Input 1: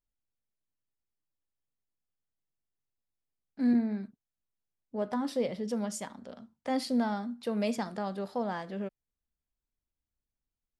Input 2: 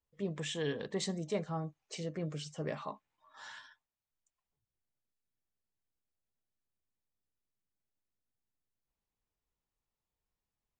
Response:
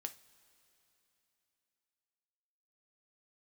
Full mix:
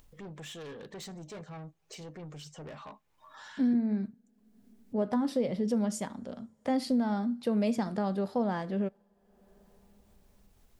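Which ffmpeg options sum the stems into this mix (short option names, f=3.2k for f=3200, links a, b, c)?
-filter_complex "[0:a]lowshelf=f=470:g=8.5,acompressor=threshold=-24dB:ratio=6,volume=-1.5dB,asplit=2[a][b];[b]volume=-12dB[c];[1:a]asoftclip=type=tanh:threshold=-39dB,volume=-2dB,asplit=2[d][e];[e]volume=-20.5dB[f];[2:a]atrim=start_sample=2205[g];[c][f]amix=inputs=2:normalize=0[h];[h][g]afir=irnorm=-1:irlink=0[i];[a][d][i]amix=inputs=3:normalize=0,acompressor=mode=upward:threshold=-44dB:ratio=2.5"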